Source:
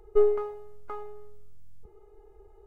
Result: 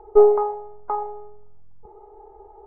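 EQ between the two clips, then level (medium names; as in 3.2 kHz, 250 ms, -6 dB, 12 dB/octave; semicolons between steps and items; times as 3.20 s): resonant low-pass 880 Hz, resonance Q 3.6; bass shelf 260 Hz -9.5 dB; +9.0 dB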